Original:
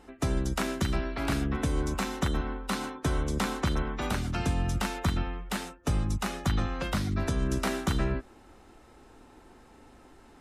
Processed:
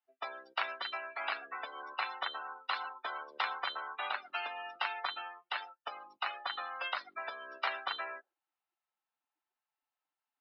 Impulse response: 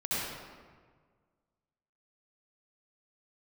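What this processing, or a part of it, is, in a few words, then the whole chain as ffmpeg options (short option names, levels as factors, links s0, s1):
musical greeting card: -af "afftdn=nr=35:nf=-37,aresample=11025,aresample=44100,highpass=f=750:w=0.5412,highpass=f=750:w=1.3066,equalizer=f=2800:t=o:w=0.59:g=4.5"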